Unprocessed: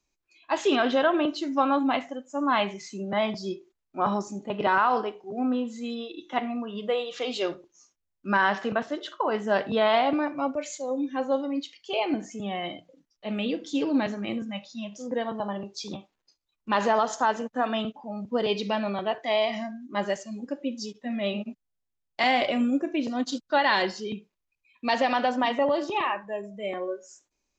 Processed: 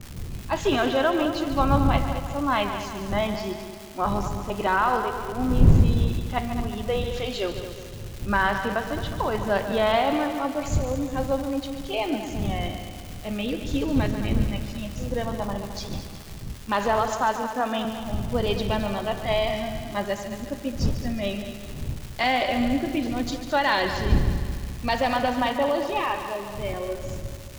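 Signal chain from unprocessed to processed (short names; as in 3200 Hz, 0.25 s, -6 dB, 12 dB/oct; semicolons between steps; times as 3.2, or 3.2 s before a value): wind noise 110 Hz -30 dBFS; crackle 490/s -32 dBFS; on a send: multi-head echo 72 ms, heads second and third, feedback 56%, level -11 dB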